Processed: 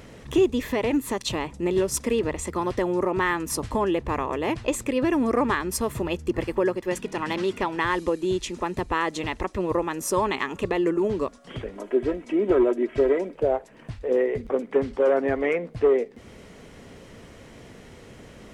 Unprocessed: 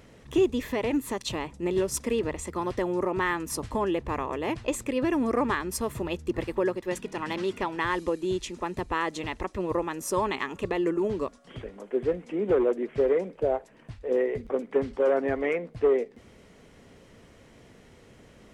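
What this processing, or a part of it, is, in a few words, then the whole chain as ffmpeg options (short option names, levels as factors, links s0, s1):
parallel compression: -filter_complex "[0:a]asettb=1/sr,asplit=3[s0][s1][s2];[s0]atrim=end=6.074[s3];[s1]atrim=start=6.07:end=6.98,asetpts=PTS-STARTPTS,afade=t=in:d=0.004:c=qsin,afade=t=out:st=0.906:d=0.004:c=qsin,bandreject=f=3800:w=11[s4];[s2]atrim=start=6.976[s5];[s3][s4]acrossfade=d=0.004:c1=hsin:c2=qsin[s6];[s6][s5]acrossfade=d=0.004:c1=qsin:c2=hsin,asplit=2[s7][s8];[s8]acompressor=threshold=0.01:ratio=6,volume=0.891[s9];[s7][s9]amix=inputs=2:normalize=0,asettb=1/sr,asplit=3[s10][s11][s12];[s10]atrim=end=11.754[s13];[s11]atrim=start=11.75:end=13.35,asetpts=PTS-STARTPTS,afade=t=in:d=0.004:c=qsin,afade=t=out:st=1.596:d=0.004:c=qsin,aecho=1:1:3.1:0.58,atrim=end_sample=70560[s14];[s12]atrim=start=13.346[s15];[s13][s14]acrossfade=d=0.004:c1=hsin:c2=qsin[s16];[s16][s15]acrossfade=d=0.004:c1=qsin:c2=hsin,volume=1.26"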